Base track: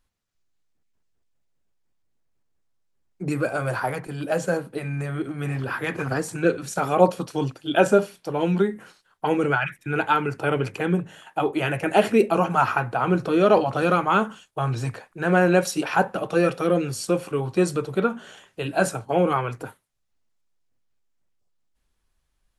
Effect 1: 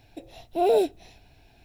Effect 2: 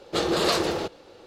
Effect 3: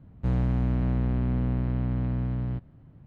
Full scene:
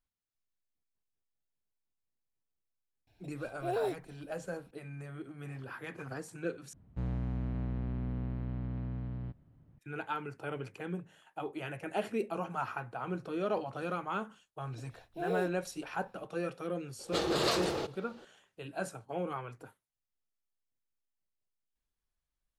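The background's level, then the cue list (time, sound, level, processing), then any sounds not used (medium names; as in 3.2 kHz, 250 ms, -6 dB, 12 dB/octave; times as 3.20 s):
base track -16 dB
3.07 s: add 1 -12.5 dB
6.73 s: replace with 3 -10 dB
14.61 s: add 1 -14.5 dB
16.99 s: add 2 -7 dB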